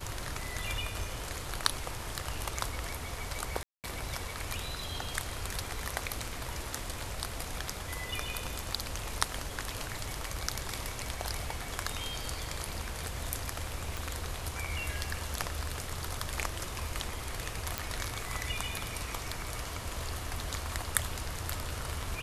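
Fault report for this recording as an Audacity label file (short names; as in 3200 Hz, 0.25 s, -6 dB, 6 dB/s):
3.630000	3.840000	gap 0.208 s
13.970000	13.970000	pop
17.780000	17.780000	pop -13 dBFS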